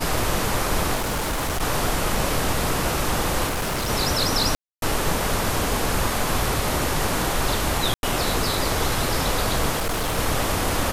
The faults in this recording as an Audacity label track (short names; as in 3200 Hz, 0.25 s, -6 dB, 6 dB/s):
0.950000	1.630000	clipped -21.5 dBFS
3.470000	3.900000	clipped -22 dBFS
4.550000	4.820000	gap 0.272 s
7.940000	8.030000	gap 91 ms
9.760000	10.190000	clipped -20.5 dBFS